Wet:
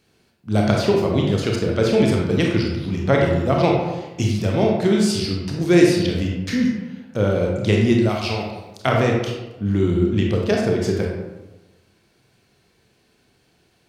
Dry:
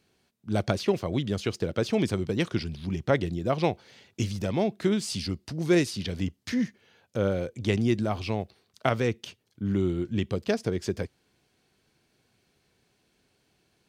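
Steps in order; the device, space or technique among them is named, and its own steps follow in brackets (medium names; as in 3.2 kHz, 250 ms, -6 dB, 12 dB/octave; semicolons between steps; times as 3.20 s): bathroom (reverberation RT60 1.1 s, pre-delay 25 ms, DRR -1 dB); 8.09–8.87 s: tilt shelf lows -6 dB, about 1.4 kHz; trim +5 dB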